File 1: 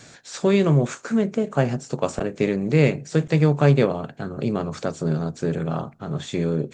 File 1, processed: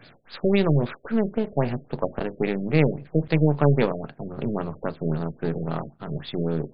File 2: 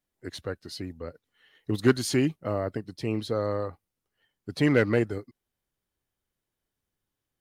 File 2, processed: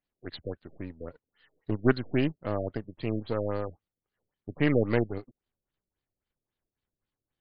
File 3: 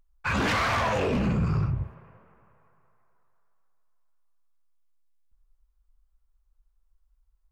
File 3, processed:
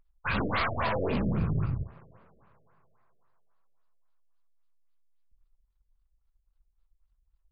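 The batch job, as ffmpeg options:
-af "aeval=exprs='if(lt(val(0),0),0.447*val(0),val(0))':c=same,aemphasis=mode=production:type=50fm,afftfilt=real='re*lt(b*sr/1024,640*pow(5100/640,0.5+0.5*sin(2*PI*3.7*pts/sr)))':imag='im*lt(b*sr/1024,640*pow(5100/640,0.5+0.5*sin(2*PI*3.7*pts/sr)))':win_size=1024:overlap=0.75"

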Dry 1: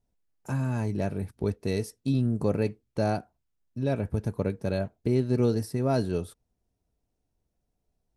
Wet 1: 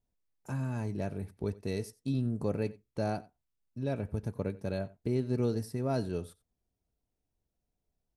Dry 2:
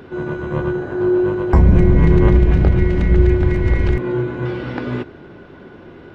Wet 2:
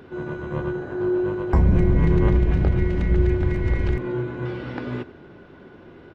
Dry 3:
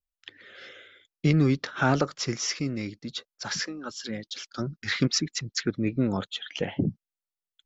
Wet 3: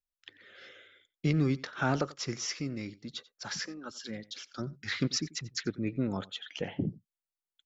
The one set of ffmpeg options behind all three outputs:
-af "aecho=1:1:90:0.0891,volume=-6dB"

